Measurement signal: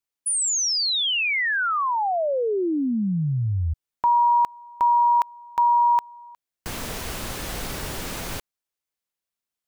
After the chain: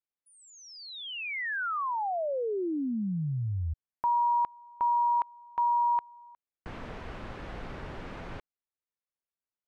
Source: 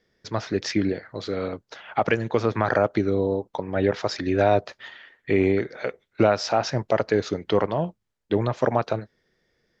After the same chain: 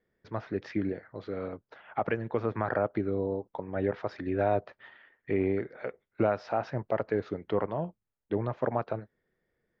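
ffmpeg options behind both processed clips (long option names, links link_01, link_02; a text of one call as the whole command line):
ffmpeg -i in.wav -af "lowpass=2000,volume=-7.5dB" out.wav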